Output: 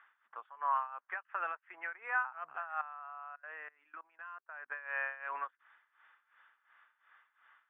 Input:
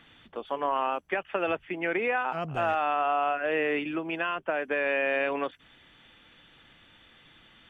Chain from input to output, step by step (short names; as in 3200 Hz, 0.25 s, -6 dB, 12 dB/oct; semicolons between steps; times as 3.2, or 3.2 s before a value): tremolo 2.8 Hz, depth 85%; Butterworth band-pass 1300 Hz, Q 1.7; 2.81–4.72 level quantiser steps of 24 dB; gain +1 dB